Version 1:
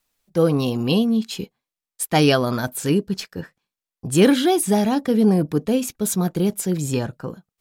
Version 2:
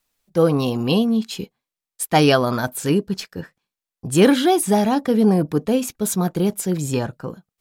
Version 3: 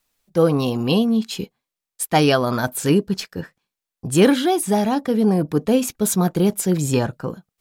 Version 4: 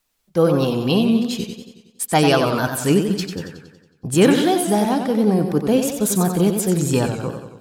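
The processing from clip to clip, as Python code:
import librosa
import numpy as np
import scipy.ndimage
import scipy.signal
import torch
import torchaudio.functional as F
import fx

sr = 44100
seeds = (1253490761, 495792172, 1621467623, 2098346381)

y1 = fx.dynamic_eq(x, sr, hz=940.0, q=0.85, threshold_db=-33.0, ratio=4.0, max_db=4)
y2 = fx.rider(y1, sr, range_db=3, speed_s=0.5)
y3 = fx.echo_warbled(y2, sr, ms=92, feedback_pct=56, rate_hz=2.8, cents=109, wet_db=-7)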